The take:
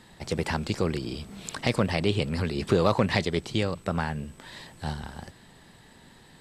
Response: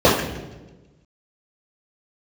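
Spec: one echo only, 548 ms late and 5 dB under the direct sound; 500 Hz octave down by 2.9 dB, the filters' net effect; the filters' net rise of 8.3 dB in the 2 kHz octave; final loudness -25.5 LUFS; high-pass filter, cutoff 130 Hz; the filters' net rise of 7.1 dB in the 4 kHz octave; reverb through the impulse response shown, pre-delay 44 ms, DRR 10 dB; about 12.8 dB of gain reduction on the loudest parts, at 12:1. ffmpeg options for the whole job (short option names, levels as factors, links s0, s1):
-filter_complex "[0:a]highpass=130,equalizer=f=500:t=o:g=-4,equalizer=f=2000:t=o:g=8.5,equalizer=f=4000:t=o:g=6,acompressor=threshold=0.0355:ratio=12,aecho=1:1:548:0.562,asplit=2[s0][s1];[1:a]atrim=start_sample=2205,adelay=44[s2];[s1][s2]afir=irnorm=-1:irlink=0,volume=0.0141[s3];[s0][s3]amix=inputs=2:normalize=0,volume=2.37"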